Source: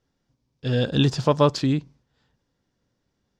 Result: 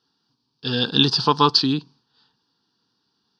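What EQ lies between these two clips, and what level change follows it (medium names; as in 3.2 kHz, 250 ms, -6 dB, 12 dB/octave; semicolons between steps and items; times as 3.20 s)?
cabinet simulation 230–7600 Hz, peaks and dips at 470 Hz +6 dB, 890 Hz +4 dB, 4.6 kHz +9 dB; treble shelf 3.9 kHz +8.5 dB; static phaser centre 2.1 kHz, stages 6; +5.5 dB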